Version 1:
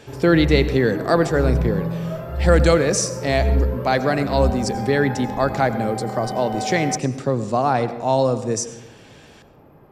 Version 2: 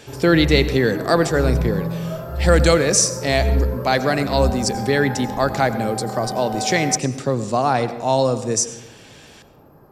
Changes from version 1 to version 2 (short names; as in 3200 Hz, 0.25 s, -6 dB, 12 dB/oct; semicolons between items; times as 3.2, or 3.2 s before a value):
background: add band shelf 2700 Hz -10 dB 1.1 oct; master: add high shelf 2800 Hz +7.5 dB